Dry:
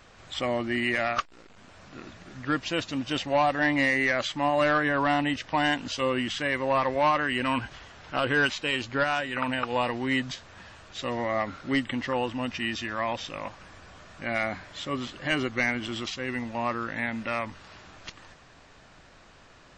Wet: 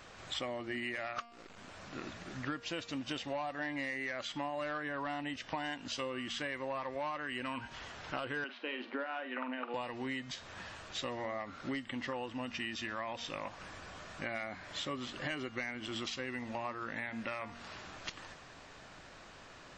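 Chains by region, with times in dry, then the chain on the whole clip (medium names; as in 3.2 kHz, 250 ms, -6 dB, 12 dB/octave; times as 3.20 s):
8.44–9.74 s: Chebyshev band-pass 230–6400 Hz, order 4 + distance through air 370 m + doubling 47 ms -12 dB
whole clip: bass shelf 130 Hz -6 dB; de-hum 234.6 Hz, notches 25; compression 8:1, threshold -37 dBFS; trim +1 dB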